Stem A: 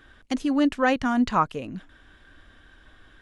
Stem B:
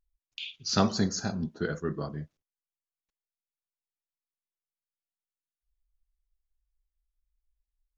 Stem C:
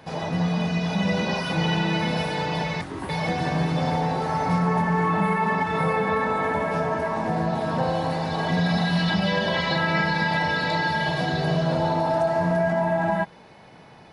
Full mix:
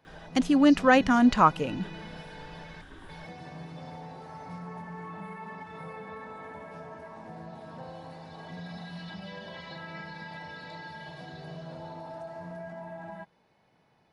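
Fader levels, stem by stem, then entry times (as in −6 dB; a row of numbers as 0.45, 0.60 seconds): +2.0, −19.0, −19.0 decibels; 0.05, 0.00, 0.00 seconds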